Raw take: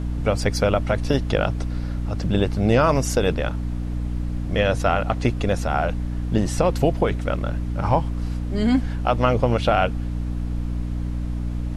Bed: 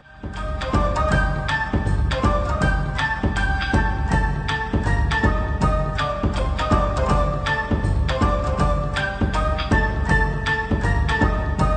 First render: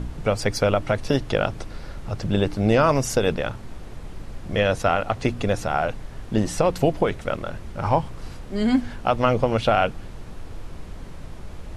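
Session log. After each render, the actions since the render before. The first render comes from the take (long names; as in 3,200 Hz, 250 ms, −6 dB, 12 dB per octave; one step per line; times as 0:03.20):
hum removal 60 Hz, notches 5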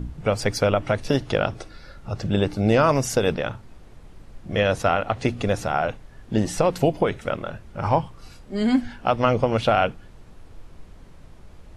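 noise reduction from a noise print 9 dB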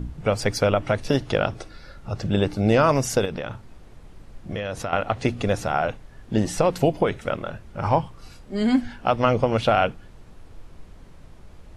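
0:03.25–0:04.93: downward compressor, threshold −25 dBFS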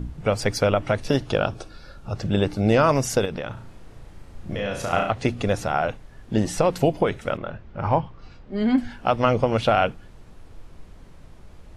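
0:01.27–0:02.13: notch filter 2,000 Hz, Q 5.1
0:03.53–0:05.10: flutter between parallel walls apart 6 metres, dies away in 0.54 s
0:07.37–0:08.78: high-frequency loss of the air 190 metres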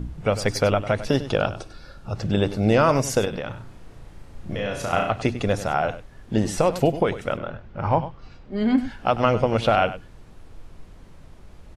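single-tap delay 98 ms −14 dB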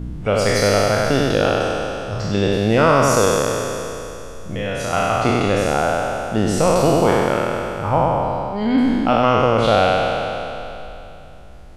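peak hold with a decay on every bin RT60 2.95 s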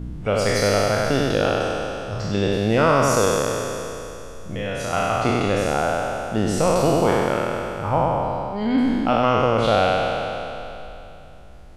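level −3 dB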